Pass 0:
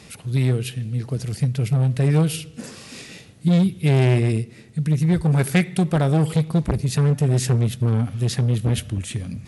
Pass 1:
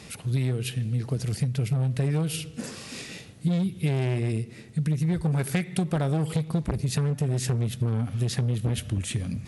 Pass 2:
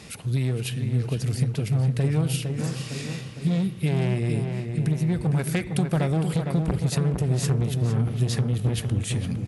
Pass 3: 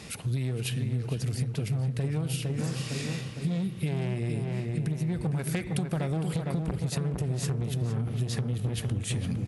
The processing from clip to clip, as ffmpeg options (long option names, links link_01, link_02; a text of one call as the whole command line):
ffmpeg -i in.wav -af "acompressor=threshold=-22dB:ratio=6" out.wav
ffmpeg -i in.wav -filter_complex "[0:a]asplit=2[link_01][link_02];[link_02]adelay=458,lowpass=frequency=2800:poles=1,volume=-6dB,asplit=2[link_03][link_04];[link_04]adelay=458,lowpass=frequency=2800:poles=1,volume=0.55,asplit=2[link_05][link_06];[link_06]adelay=458,lowpass=frequency=2800:poles=1,volume=0.55,asplit=2[link_07][link_08];[link_08]adelay=458,lowpass=frequency=2800:poles=1,volume=0.55,asplit=2[link_09][link_10];[link_10]adelay=458,lowpass=frequency=2800:poles=1,volume=0.55,asplit=2[link_11][link_12];[link_12]adelay=458,lowpass=frequency=2800:poles=1,volume=0.55,asplit=2[link_13][link_14];[link_14]adelay=458,lowpass=frequency=2800:poles=1,volume=0.55[link_15];[link_01][link_03][link_05][link_07][link_09][link_11][link_13][link_15]amix=inputs=8:normalize=0,volume=1dB" out.wav
ffmpeg -i in.wav -af "acompressor=threshold=-26dB:ratio=6" out.wav